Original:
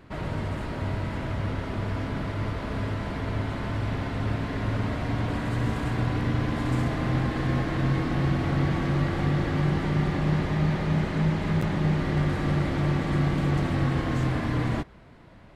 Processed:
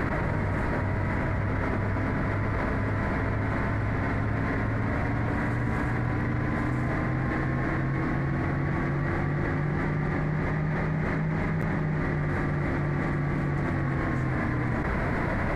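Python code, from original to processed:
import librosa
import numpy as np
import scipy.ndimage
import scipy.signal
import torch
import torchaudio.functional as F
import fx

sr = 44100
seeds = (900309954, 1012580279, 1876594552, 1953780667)

y = fx.high_shelf_res(x, sr, hz=2400.0, db=-6.0, q=3.0)
y = fx.env_flatten(y, sr, amount_pct=100)
y = y * 10.0 ** (-6.5 / 20.0)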